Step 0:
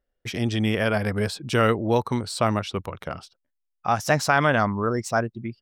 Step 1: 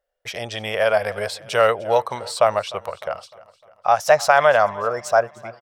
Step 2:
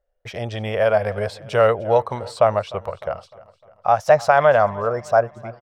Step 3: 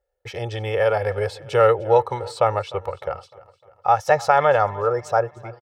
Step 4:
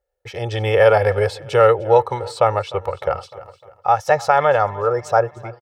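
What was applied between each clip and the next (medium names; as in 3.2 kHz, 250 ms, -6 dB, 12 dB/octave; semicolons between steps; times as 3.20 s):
resonant low shelf 410 Hz -12 dB, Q 3; feedback delay 303 ms, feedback 49%, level -20.5 dB; trim +2 dB
tilt EQ -3 dB/octave; trim -1 dB
high-pass 52 Hz; comb 2.3 ms, depth 69%; trim -1.5 dB
level rider gain up to 14 dB; trim -1 dB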